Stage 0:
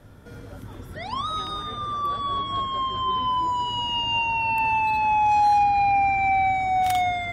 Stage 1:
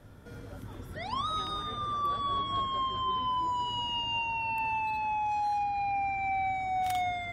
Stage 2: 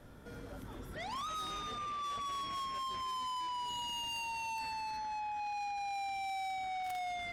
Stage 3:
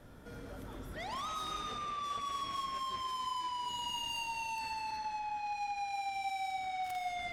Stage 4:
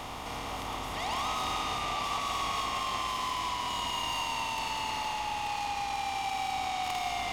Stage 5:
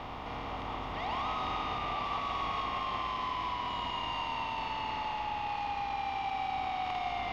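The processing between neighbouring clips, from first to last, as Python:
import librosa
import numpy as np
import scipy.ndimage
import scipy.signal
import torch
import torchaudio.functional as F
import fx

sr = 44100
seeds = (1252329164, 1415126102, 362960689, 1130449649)

y1 = fx.rider(x, sr, range_db=4, speed_s=0.5)
y1 = y1 * 10.0 ** (-8.0 / 20.0)
y2 = fx.peak_eq(y1, sr, hz=100.0, db=-7.5, octaves=0.8)
y2 = 10.0 ** (-37.5 / 20.0) * np.tanh(y2 / 10.0 ** (-37.5 / 20.0))
y3 = fx.rev_freeverb(y2, sr, rt60_s=1.4, hf_ratio=0.85, predelay_ms=65, drr_db=6.5)
y4 = fx.bin_compress(y3, sr, power=0.4)
y4 = y4 + 10.0 ** (-6.0 / 20.0) * np.pad(y4, (int(883 * sr / 1000.0), 0))[:len(y4)]
y5 = fx.dmg_noise_colour(y4, sr, seeds[0], colour='blue', level_db=-54.0)
y5 = fx.air_absorb(y5, sr, metres=280.0)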